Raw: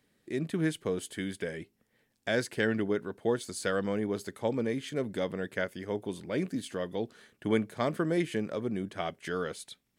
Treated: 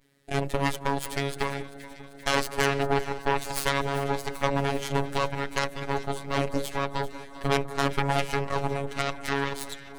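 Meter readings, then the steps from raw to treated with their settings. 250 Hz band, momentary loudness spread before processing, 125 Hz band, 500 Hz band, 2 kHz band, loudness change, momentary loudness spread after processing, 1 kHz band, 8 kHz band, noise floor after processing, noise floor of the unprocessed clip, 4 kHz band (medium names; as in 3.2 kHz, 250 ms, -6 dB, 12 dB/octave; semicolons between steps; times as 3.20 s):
-0.5 dB, 8 LU, +6.5 dB, +2.5 dB, +6.5 dB, +4.5 dB, 6 LU, +12.5 dB, +7.5 dB, -45 dBFS, -76 dBFS, +9.0 dB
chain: vibrato 0.31 Hz 44 cents; in parallel at +2 dB: compression, threshold -36 dBFS, peak gain reduction 14 dB; on the sum: Chebyshev shaper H 8 -8 dB, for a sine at -11 dBFS; robot voice 139 Hz; de-hum 51.15 Hz, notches 11; on a send: echo whose repeats swap between lows and highs 196 ms, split 1.5 kHz, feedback 82%, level -14 dB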